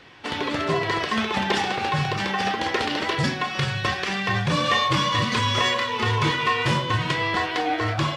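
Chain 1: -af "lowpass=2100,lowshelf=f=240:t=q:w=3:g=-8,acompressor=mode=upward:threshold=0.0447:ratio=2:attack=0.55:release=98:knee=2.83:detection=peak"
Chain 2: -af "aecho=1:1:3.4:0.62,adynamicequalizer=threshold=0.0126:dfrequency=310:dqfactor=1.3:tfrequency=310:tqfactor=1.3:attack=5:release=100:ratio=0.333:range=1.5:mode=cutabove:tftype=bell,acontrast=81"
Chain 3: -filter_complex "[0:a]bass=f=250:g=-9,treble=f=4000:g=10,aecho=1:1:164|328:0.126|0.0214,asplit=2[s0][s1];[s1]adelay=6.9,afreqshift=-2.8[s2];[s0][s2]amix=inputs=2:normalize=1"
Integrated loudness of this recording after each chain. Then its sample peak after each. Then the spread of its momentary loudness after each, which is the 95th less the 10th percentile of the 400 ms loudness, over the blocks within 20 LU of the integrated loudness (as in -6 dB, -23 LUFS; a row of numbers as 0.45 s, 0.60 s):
-24.5 LUFS, -16.0 LUFS, -25.0 LUFS; -8.5 dBFS, -4.0 dBFS, -10.0 dBFS; 4 LU, 5 LU, 6 LU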